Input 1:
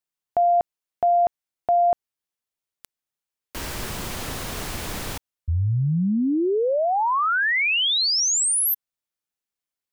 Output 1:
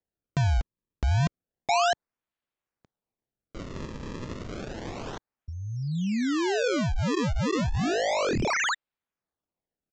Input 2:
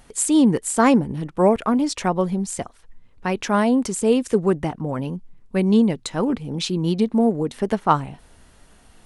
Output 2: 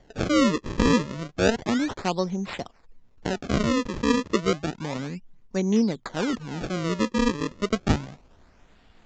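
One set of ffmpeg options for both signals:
-filter_complex "[0:a]acrossover=split=150[a][b];[a]acompressor=threshold=-38dB:ratio=3:release=590:knee=2.83:detection=peak[c];[c][b]amix=inputs=2:normalize=0,acrusher=samples=34:mix=1:aa=0.000001:lfo=1:lforange=54.4:lforate=0.31,aresample=16000,aresample=44100,volume=-4.5dB"

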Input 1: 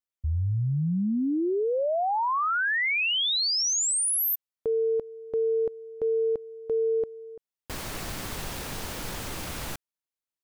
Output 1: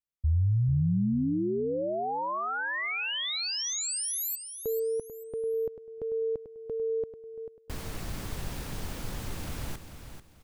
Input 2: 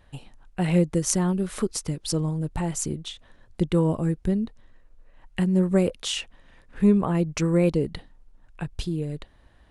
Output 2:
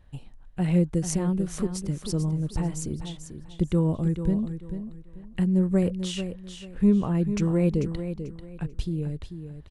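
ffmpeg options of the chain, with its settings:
-filter_complex "[0:a]lowshelf=f=250:g=10,asplit=2[a][b];[b]aecho=0:1:441|882|1323:0.335|0.0904|0.0244[c];[a][c]amix=inputs=2:normalize=0,volume=-7dB"

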